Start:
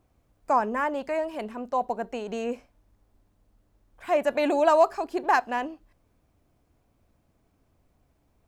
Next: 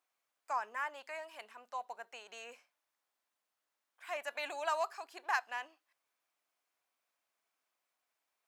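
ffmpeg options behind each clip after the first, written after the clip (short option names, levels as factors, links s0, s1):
-af "highpass=1300,volume=0.501"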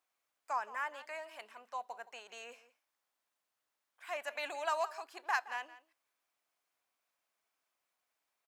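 -filter_complex "[0:a]asplit=2[s0][s1];[s1]adelay=169.1,volume=0.158,highshelf=f=4000:g=-3.8[s2];[s0][s2]amix=inputs=2:normalize=0"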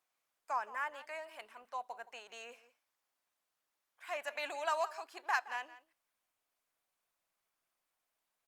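-ar 48000 -c:a libopus -b:a 48k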